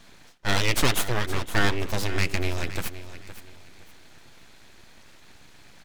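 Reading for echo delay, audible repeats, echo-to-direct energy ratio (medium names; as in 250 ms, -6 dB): 516 ms, 2, -13.0 dB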